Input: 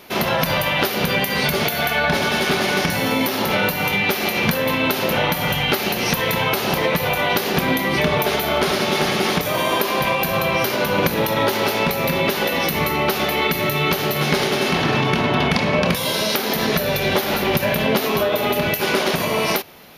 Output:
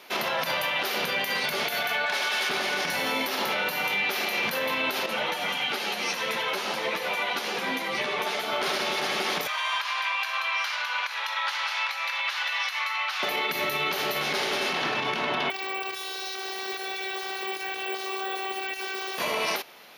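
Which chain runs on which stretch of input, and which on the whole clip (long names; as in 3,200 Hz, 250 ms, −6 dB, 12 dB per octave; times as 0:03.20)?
0:02.06–0:02.49: high-pass filter 870 Hz 6 dB per octave + gain into a clipping stage and back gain 16 dB
0:05.06–0:08.53: Chebyshev band-pass filter 170–9,600 Hz + echo with a time of its own for lows and highs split 2,500 Hz, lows 120 ms, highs 87 ms, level −11 dB + string-ensemble chorus
0:09.47–0:13.23: high-pass filter 1,000 Hz 24 dB per octave + high-frequency loss of the air 70 metres
0:15.50–0:19.18: phases set to zero 385 Hz + bad sample-rate conversion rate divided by 2×, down filtered, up zero stuff
whole clip: meter weighting curve A; brickwall limiter −14 dBFS; level −4 dB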